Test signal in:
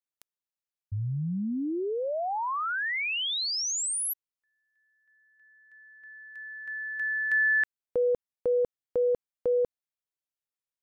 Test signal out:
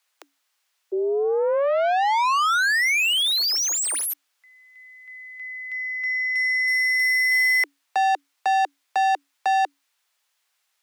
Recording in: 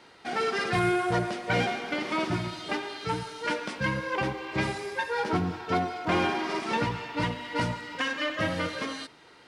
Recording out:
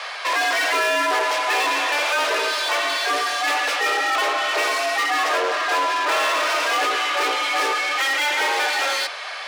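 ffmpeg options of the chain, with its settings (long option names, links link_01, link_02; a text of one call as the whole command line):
ffmpeg -i in.wav -filter_complex "[0:a]asplit=2[link_01][link_02];[link_02]highpass=frequency=720:poles=1,volume=32dB,asoftclip=type=tanh:threshold=-14.5dB[link_03];[link_01][link_03]amix=inputs=2:normalize=0,lowpass=frequency=5000:poles=1,volume=-6dB,afreqshift=280" out.wav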